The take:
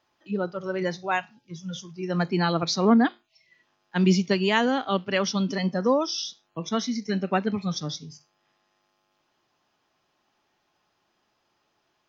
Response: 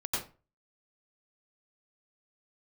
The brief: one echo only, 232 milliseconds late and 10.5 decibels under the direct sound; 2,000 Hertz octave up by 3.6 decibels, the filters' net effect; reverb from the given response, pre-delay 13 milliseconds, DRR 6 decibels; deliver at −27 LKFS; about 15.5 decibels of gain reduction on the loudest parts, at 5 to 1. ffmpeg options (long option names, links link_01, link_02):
-filter_complex "[0:a]equalizer=frequency=2000:width_type=o:gain=4.5,acompressor=threshold=-32dB:ratio=5,aecho=1:1:232:0.299,asplit=2[link_01][link_02];[1:a]atrim=start_sample=2205,adelay=13[link_03];[link_02][link_03]afir=irnorm=-1:irlink=0,volume=-11.5dB[link_04];[link_01][link_04]amix=inputs=2:normalize=0,volume=7.5dB"